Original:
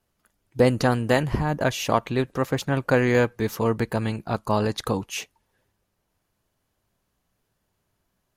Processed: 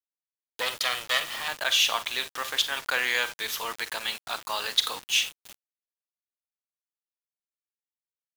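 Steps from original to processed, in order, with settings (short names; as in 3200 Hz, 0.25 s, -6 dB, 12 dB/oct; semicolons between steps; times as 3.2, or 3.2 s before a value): 0.61–1.48 minimum comb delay 1.6 ms; in parallel at -1.5 dB: limiter -16 dBFS, peak gain reduction 10 dB; on the sum: HPF 1400 Hz 12 dB/oct; bell 3400 Hz +11 dB 0.58 oct; on a send: thin delay 0.336 s, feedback 40%, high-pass 3000 Hz, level -20.5 dB; on the sum: Schroeder reverb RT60 0.33 s, combs from 32 ms, DRR 11 dB; bit-crush 6-bit; gain -2 dB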